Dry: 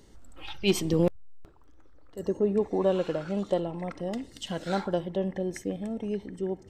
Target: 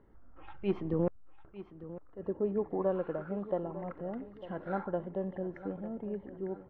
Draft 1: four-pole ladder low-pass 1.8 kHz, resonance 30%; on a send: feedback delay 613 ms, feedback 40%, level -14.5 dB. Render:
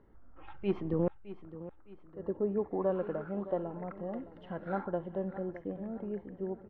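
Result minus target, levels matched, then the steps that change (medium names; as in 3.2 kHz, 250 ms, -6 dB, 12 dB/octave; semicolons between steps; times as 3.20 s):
echo 288 ms early
change: feedback delay 901 ms, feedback 40%, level -14.5 dB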